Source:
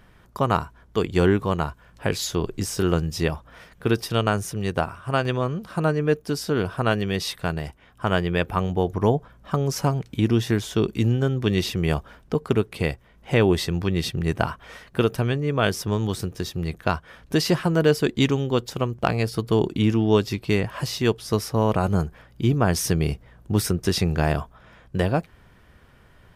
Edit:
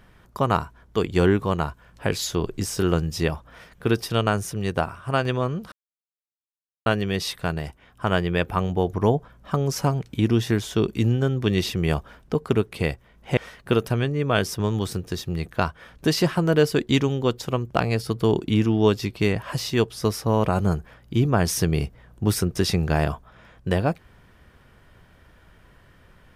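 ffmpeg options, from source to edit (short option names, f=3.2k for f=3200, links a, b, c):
-filter_complex "[0:a]asplit=4[a][b][c][d];[a]atrim=end=5.72,asetpts=PTS-STARTPTS,afade=t=out:st=5.716:d=0.004:c=hsin[e];[b]atrim=start=5.72:end=6.86,asetpts=PTS-STARTPTS,volume=0[f];[c]atrim=start=6.86:end=13.372,asetpts=PTS-STARTPTS,afade=t=in:d=0.004:c=hsin[g];[d]atrim=start=14.648[h];[e][f][g]concat=n=3:v=0:a=1[i];[i][h]acrossfade=d=0.004:c1=hsin:c2=hsin"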